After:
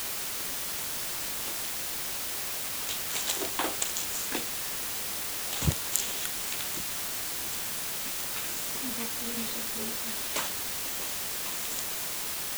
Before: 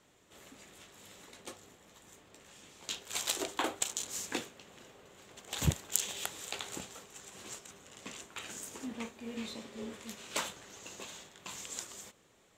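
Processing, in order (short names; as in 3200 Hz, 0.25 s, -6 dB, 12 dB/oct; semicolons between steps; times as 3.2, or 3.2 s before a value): 6.2–8.24 elliptic band-stop 370–1400 Hz; requantised 6-bit, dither triangular; gain +2 dB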